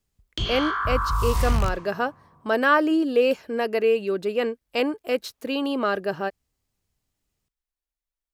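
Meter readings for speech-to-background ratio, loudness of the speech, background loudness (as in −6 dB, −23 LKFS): 1.5 dB, −24.5 LKFS, −26.0 LKFS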